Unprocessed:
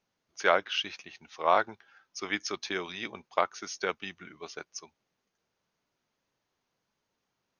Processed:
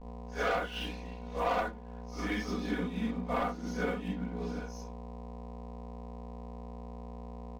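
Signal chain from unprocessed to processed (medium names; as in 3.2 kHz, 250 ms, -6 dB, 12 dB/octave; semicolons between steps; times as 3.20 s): phase randomisation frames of 200 ms; mains buzz 60 Hz, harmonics 18, -45 dBFS -2 dB/octave; tilt EQ -3 dB/octave; hum notches 50/100/150/200/250/300/350/400 Hz; waveshaping leveller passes 3; expander -14 dBFS; 2.48–4.60 s: peaking EQ 230 Hz +10.5 dB 1.1 oct; compression 4:1, threshold -34 dBFS, peak gain reduction 15 dB; comb 4.1 ms, depth 89%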